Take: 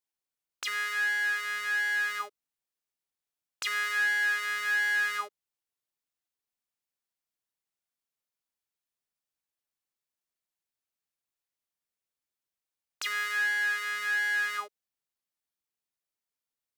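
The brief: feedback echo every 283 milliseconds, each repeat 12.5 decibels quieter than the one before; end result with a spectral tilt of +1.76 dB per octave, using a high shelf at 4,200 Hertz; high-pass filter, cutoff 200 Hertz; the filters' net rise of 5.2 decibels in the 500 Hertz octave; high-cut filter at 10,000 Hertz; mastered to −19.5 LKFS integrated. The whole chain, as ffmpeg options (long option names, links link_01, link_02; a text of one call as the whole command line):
ffmpeg -i in.wav -af "highpass=200,lowpass=10000,equalizer=frequency=500:width_type=o:gain=7,highshelf=frequency=4200:gain=4.5,aecho=1:1:283|566|849:0.237|0.0569|0.0137,volume=7.5dB" out.wav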